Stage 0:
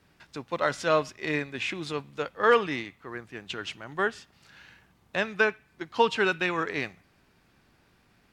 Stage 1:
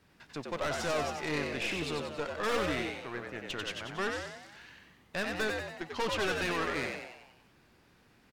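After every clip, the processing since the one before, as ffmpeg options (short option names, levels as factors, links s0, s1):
-filter_complex "[0:a]aeval=exprs='(tanh(28.2*val(0)+0.5)-tanh(0.5))/28.2':c=same,asplit=8[s0][s1][s2][s3][s4][s5][s6][s7];[s1]adelay=93,afreqshift=81,volume=0.631[s8];[s2]adelay=186,afreqshift=162,volume=0.335[s9];[s3]adelay=279,afreqshift=243,volume=0.178[s10];[s4]adelay=372,afreqshift=324,volume=0.0944[s11];[s5]adelay=465,afreqshift=405,volume=0.0495[s12];[s6]adelay=558,afreqshift=486,volume=0.0263[s13];[s7]adelay=651,afreqshift=567,volume=0.014[s14];[s0][s8][s9][s10][s11][s12][s13][s14]amix=inputs=8:normalize=0"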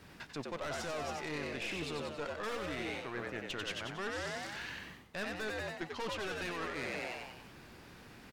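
-af "alimiter=level_in=1.78:limit=0.0631:level=0:latency=1:release=372,volume=0.562,areverse,acompressor=threshold=0.00501:ratio=6,areverse,volume=2.99"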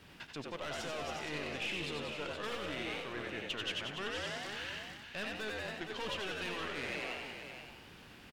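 -af "equalizer=f=3000:w=2.6:g=7.5,aecho=1:1:79|469:0.299|0.398,volume=0.75"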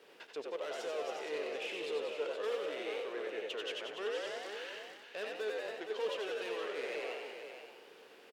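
-af "highpass=f=450:t=q:w=4.6,volume=0.596"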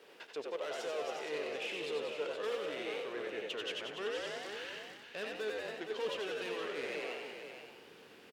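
-af "asubboost=boost=5.5:cutoff=200,volume=1.19"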